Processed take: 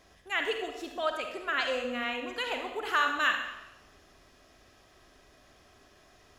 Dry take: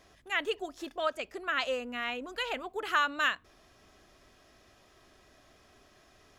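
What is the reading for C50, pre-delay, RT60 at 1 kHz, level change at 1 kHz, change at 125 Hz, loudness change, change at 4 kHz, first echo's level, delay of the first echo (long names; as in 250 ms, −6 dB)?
4.5 dB, 39 ms, 0.95 s, +1.5 dB, can't be measured, +1.5 dB, +1.5 dB, no echo audible, no echo audible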